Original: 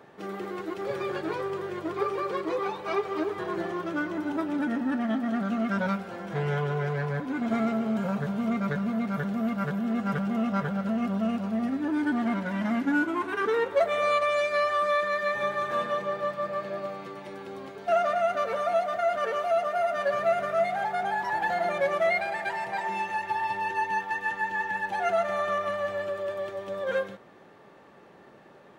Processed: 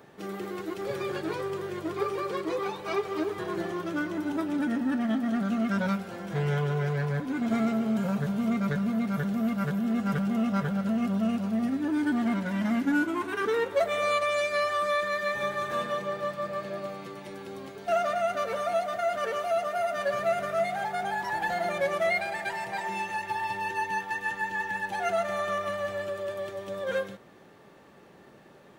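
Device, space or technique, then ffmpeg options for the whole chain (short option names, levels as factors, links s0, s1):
smiley-face EQ: -af "lowshelf=f=160:g=4,equalizer=f=930:t=o:w=2.2:g=-3,highshelf=f=5800:g=8.5"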